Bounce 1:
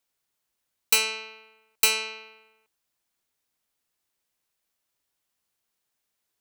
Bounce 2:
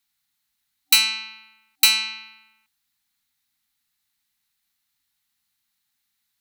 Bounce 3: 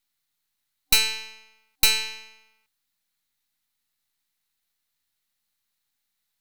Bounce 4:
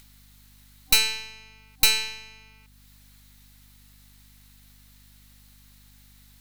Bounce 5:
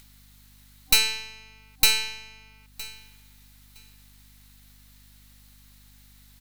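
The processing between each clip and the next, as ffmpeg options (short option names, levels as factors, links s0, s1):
-af "afftfilt=real='re*(1-between(b*sr/4096,280,770))':imag='im*(1-between(b*sr/4096,280,770))':win_size=4096:overlap=0.75,equalizer=f=1000:t=o:w=0.33:g=-6,equalizer=f=2000:t=o:w=0.33:g=4,equalizer=f=4000:t=o:w=0.33:g=8,equalizer=f=12500:t=o:w=0.33:g=5,volume=1.33"
-af "aeval=exprs='if(lt(val(0),0),0.251*val(0),val(0))':c=same"
-filter_complex "[0:a]asplit=2[s0][s1];[s1]acompressor=mode=upward:threshold=0.0316:ratio=2.5,volume=1.33[s2];[s0][s2]amix=inputs=2:normalize=0,aeval=exprs='val(0)+0.00447*(sin(2*PI*50*n/s)+sin(2*PI*2*50*n/s)/2+sin(2*PI*3*50*n/s)/3+sin(2*PI*4*50*n/s)/4+sin(2*PI*5*50*n/s)/5)':c=same,volume=0.422"
-af "aecho=1:1:963|1926:0.112|0.018"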